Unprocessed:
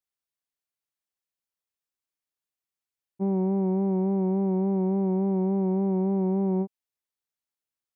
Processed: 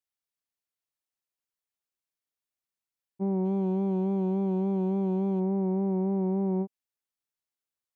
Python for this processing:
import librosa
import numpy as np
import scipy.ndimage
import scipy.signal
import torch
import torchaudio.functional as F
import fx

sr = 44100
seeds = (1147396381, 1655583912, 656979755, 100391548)

y = fx.median_filter(x, sr, points=25, at=(3.44, 5.39), fade=0.02)
y = y * 10.0 ** (-2.5 / 20.0)